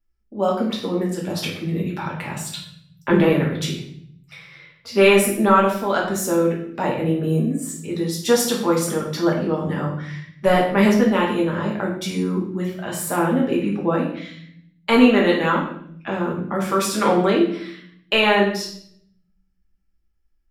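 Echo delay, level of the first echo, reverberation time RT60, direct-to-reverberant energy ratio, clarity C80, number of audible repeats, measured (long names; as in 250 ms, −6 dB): no echo audible, no echo audible, 0.60 s, −2.5 dB, 8.5 dB, no echo audible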